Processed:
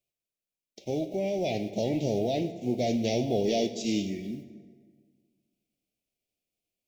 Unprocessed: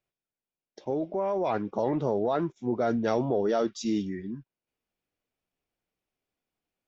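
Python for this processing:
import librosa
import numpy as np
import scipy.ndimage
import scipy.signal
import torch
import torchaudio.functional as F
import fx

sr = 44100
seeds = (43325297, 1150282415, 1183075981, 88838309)

y = fx.envelope_flatten(x, sr, power=0.6)
y = scipy.signal.sosfilt(scipy.signal.ellip(3, 1.0, 70, [680.0, 2300.0], 'bandstop', fs=sr, output='sos'), y)
y = fx.rev_plate(y, sr, seeds[0], rt60_s=1.8, hf_ratio=0.6, predelay_ms=0, drr_db=9.5)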